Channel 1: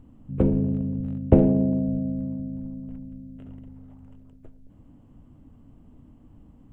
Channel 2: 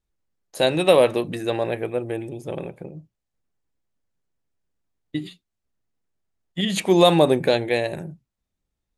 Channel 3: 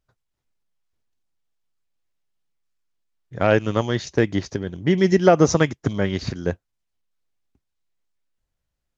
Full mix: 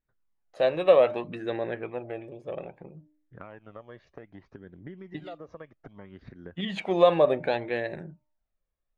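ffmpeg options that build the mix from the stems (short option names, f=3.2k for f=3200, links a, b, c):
-filter_complex "[1:a]bandreject=f=303.1:t=h:w=4,bandreject=f=606.2:t=h:w=4,bandreject=f=909.3:t=h:w=4,volume=0dB[a];[2:a]aemphasis=mode=reproduction:type=75fm,alimiter=limit=-9dB:level=0:latency=1:release=218,acompressor=threshold=-28dB:ratio=6,volume=-5.5dB[b];[a][b]amix=inputs=2:normalize=0,lowpass=2.3k,equalizer=f=97:t=o:w=2.3:g=-9.5,flanger=delay=0.5:depth=1.3:regen=31:speed=0.63:shape=sinusoidal"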